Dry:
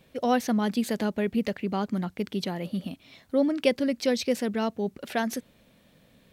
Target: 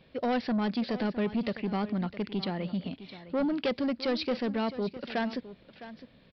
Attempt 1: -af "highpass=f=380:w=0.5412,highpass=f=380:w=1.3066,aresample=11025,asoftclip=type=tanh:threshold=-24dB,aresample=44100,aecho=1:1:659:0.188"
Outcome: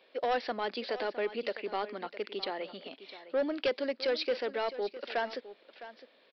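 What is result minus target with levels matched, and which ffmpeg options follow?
500 Hz band +3.5 dB
-af "aresample=11025,asoftclip=type=tanh:threshold=-24dB,aresample=44100,aecho=1:1:659:0.188"

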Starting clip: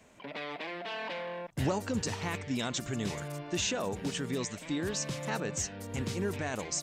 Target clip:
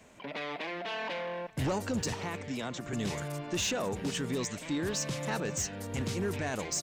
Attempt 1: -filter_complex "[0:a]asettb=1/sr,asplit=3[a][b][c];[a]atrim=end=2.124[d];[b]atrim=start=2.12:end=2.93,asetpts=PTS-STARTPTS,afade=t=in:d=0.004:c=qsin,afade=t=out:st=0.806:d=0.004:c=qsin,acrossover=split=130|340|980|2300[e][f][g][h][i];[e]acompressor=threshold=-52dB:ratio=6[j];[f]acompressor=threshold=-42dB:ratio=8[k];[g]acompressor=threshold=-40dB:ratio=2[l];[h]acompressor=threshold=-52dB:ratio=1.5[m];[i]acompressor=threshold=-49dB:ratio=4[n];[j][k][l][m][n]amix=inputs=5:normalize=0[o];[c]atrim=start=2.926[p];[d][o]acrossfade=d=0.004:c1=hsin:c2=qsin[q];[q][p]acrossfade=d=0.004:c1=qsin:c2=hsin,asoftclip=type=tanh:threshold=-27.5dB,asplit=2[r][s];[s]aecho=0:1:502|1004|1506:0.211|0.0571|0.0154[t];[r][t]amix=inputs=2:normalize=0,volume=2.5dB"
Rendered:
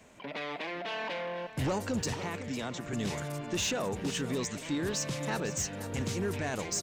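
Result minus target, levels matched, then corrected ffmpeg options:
echo-to-direct +10 dB
-filter_complex "[0:a]asettb=1/sr,asplit=3[a][b][c];[a]atrim=end=2.124[d];[b]atrim=start=2.12:end=2.93,asetpts=PTS-STARTPTS,afade=t=in:d=0.004:c=qsin,afade=t=out:st=0.806:d=0.004:c=qsin,acrossover=split=130|340|980|2300[e][f][g][h][i];[e]acompressor=threshold=-52dB:ratio=6[j];[f]acompressor=threshold=-42dB:ratio=8[k];[g]acompressor=threshold=-40dB:ratio=2[l];[h]acompressor=threshold=-52dB:ratio=1.5[m];[i]acompressor=threshold=-49dB:ratio=4[n];[j][k][l][m][n]amix=inputs=5:normalize=0[o];[c]atrim=start=2.926[p];[d][o]acrossfade=d=0.004:c1=hsin:c2=qsin[q];[q][p]acrossfade=d=0.004:c1=qsin:c2=hsin,asoftclip=type=tanh:threshold=-27.5dB,asplit=2[r][s];[s]aecho=0:1:502|1004:0.0668|0.018[t];[r][t]amix=inputs=2:normalize=0,volume=2.5dB"

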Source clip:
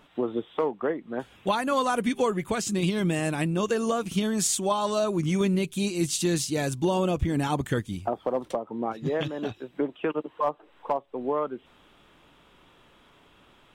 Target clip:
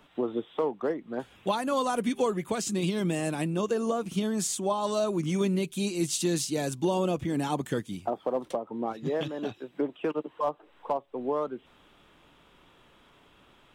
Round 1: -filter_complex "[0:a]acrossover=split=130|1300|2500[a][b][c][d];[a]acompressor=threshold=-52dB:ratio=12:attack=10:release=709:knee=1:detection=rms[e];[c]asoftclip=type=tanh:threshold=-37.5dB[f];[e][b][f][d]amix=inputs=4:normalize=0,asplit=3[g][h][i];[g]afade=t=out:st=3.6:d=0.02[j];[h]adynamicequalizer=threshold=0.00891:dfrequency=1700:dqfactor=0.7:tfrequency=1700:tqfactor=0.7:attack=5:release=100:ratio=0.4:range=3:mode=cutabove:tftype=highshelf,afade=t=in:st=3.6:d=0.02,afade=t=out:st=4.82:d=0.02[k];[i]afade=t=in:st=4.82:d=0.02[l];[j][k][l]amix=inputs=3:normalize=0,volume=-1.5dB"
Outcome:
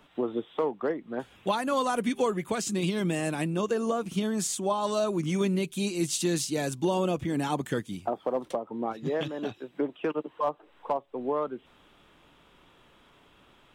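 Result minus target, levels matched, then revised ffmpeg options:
soft clip: distortion -7 dB
-filter_complex "[0:a]acrossover=split=130|1300|2500[a][b][c][d];[a]acompressor=threshold=-52dB:ratio=12:attack=10:release=709:knee=1:detection=rms[e];[c]asoftclip=type=tanh:threshold=-48dB[f];[e][b][f][d]amix=inputs=4:normalize=0,asplit=3[g][h][i];[g]afade=t=out:st=3.6:d=0.02[j];[h]adynamicequalizer=threshold=0.00891:dfrequency=1700:dqfactor=0.7:tfrequency=1700:tqfactor=0.7:attack=5:release=100:ratio=0.4:range=3:mode=cutabove:tftype=highshelf,afade=t=in:st=3.6:d=0.02,afade=t=out:st=4.82:d=0.02[k];[i]afade=t=in:st=4.82:d=0.02[l];[j][k][l]amix=inputs=3:normalize=0,volume=-1.5dB"

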